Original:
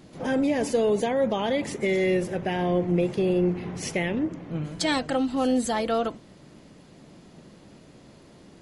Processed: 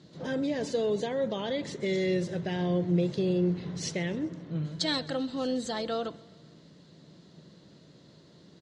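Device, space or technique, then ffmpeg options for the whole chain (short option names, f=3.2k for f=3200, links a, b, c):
car door speaker: -filter_complex "[0:a]asettb=1/sr,asplit=3[a][b][c];[a]atrim=end=1.864[d];[b]atrim=start=1.86:end=3.93,asetpts=PTS-STARTPTS,afade=t=in:d=0.004:c=qsin,afade=t=out:st=2.066:d=0.004:c=qsin,bass=f=250:g=2,treble=f=4k:g=5[e];[c]atrim=start=3.926[f];[d][e]acrossfade=d=0.004:c1=hsin:c2=qsin[g];[g][f]acrossfade=d=0.004:c1=qsin:c2=hsin,highpass=88,equalizer=f=160:t=q:w=4:g=6,equalizer=f=240:t=q:w=4:g=-4,equalizer=f=790:t=q:w=4:g=-7,equalizer=f=1.2k:t=q:w=4:g=-3,equalizer=f=2.4k:t=q:w=4:g=-7,equalizer=f=4k:t=q:w=4:g=9,lowpass=f=7.3k:w=0.5412,lowpass=f=7.3k:w=1.3066,aecho=1:1:131|262|393|524:0.075|0.0427|0.0244|0.0139,volume=-5dB"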